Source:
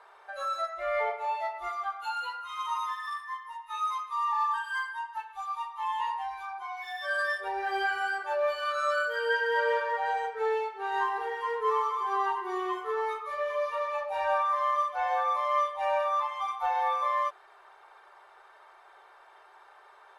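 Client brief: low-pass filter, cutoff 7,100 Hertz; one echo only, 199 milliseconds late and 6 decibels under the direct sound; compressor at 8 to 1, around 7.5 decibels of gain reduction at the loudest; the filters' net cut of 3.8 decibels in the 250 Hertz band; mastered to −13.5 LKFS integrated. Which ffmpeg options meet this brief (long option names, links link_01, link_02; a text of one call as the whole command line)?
ffmpeg -i in.wav -af "lowpass=7100,equalizer=frequency=250:width_type=o:gain=-9,acompressor=threshold=-32dB:ratio=8,aecho=1:1:199:0.501,volume=21.5dB" out.wav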